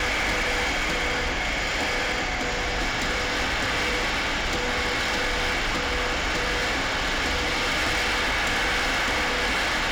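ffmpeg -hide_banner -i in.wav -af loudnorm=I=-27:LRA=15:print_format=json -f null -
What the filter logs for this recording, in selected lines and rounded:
"input_i" : "-23.7",
"input_tp" : "-19.6",
"input_lra" : "1.6",
"input_thresh" : "-33.7",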